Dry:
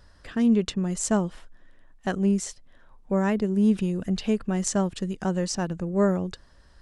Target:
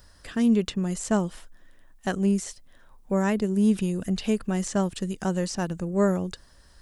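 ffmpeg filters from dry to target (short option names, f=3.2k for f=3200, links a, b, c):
-filter_complex "[0:a]aemphasis=mode=production:type=50fm,acrossover=split=3500[a][b];[b]acompressor=threshold=-35dB:ratio=4:attack=1:release=60[c];[a][c]amix=inputs=2:normalize=0"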